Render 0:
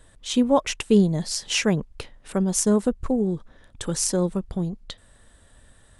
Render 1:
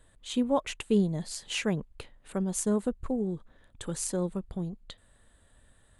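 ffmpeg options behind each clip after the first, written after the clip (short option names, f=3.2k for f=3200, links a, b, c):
-af "equalizer=f=5.5k:w=4.4:g=-10,volume=-7.5dB"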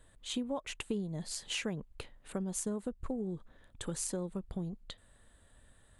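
-af "acompressor=threshold=-32dB:ratio=6,volume=-1dB"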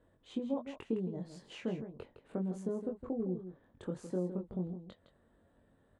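-filter_complex "[0:a]bandpass=f=330:t=q:w=0.7:csg=0,asplit=2[a][b];[b]adelay=22,volume=-4dB[c];[a][c]amix=inputs=2:normalize=0,aecho=1:1:161:0.299,volume=1dB"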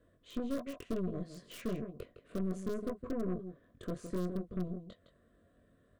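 -filter_complex "[0:a]aeval=exprs='(tanh(70.8*val(0)+0.8)-tanh(0.8))/70.8':c=same,acrossover=split=1100[a][b];[b]aeval=exprs='(mod(299*val(0)+1,2)-1)/299':c=same[c];[a][c]amix=inputs=2:normalize=0,asuperstop=centerf=850:order=20:qfactor=3.6,volume=6dB"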